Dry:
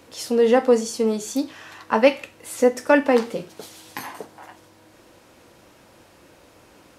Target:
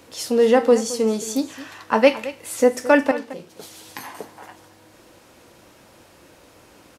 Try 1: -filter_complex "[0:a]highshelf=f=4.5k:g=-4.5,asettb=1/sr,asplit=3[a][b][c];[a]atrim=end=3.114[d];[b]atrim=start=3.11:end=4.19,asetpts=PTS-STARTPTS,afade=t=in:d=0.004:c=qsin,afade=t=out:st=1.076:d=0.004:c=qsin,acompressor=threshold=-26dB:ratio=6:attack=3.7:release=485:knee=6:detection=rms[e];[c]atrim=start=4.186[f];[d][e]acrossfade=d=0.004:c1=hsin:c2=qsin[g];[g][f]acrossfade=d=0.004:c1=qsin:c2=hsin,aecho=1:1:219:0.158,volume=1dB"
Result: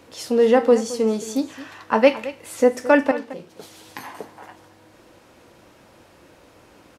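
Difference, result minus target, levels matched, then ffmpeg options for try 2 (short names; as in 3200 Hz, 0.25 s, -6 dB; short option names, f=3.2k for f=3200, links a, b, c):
8000 Hz band -5.0 dB
-filter_complex "[0:a]highshelf=f=4.5k:g=2.5,asettb=1/sr,asplit=3[a][b][c];[a]atrim=end=3.114[d];[b]atrim=start=3.11:end=4.19,asetpts=PTS-STARTPTS,afade=t=in:d=0.004:c=qsin,afade=t=out:st=1.076:d=0.004:c=qsin,acompressor=threshold=-26dB:ratio=6:attack=3.7:release=485:knee=6:detection=rms[e];[c]atrim=start=4.186[f];[d][e]acrossfade=d=0.004:c1=hsin:c2=qsin[g];[g][f]acrossfade=d=0.004:c1=qsin:c2=hsin,aecho=1:1:219:0.158,volume=1dB"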